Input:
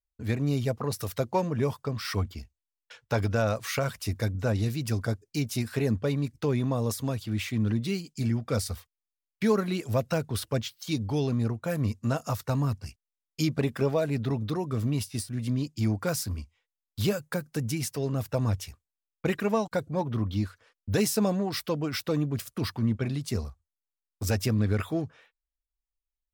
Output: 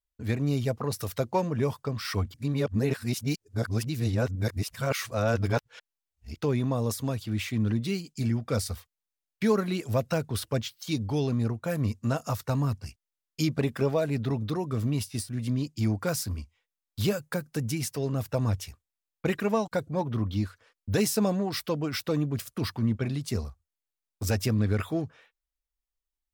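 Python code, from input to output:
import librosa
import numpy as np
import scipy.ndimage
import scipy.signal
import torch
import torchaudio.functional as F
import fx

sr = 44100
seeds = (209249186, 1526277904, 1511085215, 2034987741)

y = fx.edit(x, sr, fx.reverse_span(start_s=2.34, length_s=4.02), tone=tone)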